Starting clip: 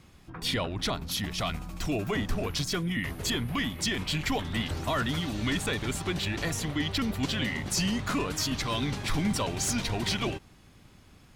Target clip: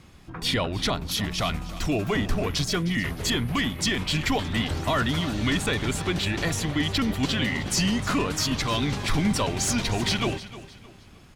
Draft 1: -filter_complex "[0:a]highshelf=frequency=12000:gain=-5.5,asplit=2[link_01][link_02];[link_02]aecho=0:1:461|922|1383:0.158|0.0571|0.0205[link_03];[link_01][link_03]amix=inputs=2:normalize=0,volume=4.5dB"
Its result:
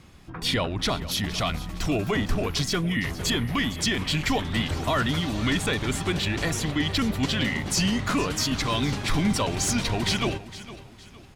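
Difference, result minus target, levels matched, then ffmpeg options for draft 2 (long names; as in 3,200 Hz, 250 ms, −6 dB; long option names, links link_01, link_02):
echo 153 ms late
-filter_complex "[0:a]highshelf=frequency=12000:gain=-5.5,asplit=2[link_01][link_02];[link_02]aecho=0:1:308|616|924:0.158|0.0571|0.0205[link_03];[link_01][link_03]amix=inputs=2:normalize=0,volume=4.5dB"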